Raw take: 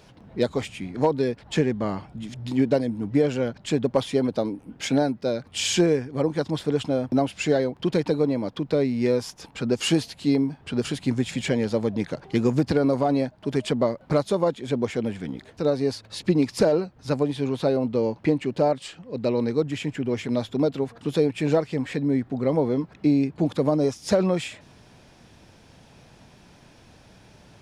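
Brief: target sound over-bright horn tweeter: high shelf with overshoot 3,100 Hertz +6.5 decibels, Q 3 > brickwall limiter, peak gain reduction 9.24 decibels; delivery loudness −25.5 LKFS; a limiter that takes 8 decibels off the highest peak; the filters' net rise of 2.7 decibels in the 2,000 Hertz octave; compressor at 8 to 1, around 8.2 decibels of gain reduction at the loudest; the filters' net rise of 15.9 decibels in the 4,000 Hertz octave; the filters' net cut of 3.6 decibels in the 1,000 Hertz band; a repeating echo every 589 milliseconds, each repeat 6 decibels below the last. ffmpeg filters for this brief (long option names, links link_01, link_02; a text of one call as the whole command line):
ffmpeg -i in.wav -af "equalizer=frequency=1000:width_type=o:gain=-6.5,equalizer=frequency=2000:width_type=o:gain=7.5,equalizer=frequency=4000:width_type=o:gain=7.5,acompressor=threshold=-24dB:ratio=8,alimiter=limit=-19.5dB:level=0:latency=1,highshelf=frequency=3100:width_type=q:width=3:gain=6.5,aecho=1:1:589|1178|1767|2356|2945|3534:0.501|0.251|0.125|0.0626|0.0313|0.0157,volume=3dB,alimiter=limit=-15.5dB:level=0:latency=1" out.wav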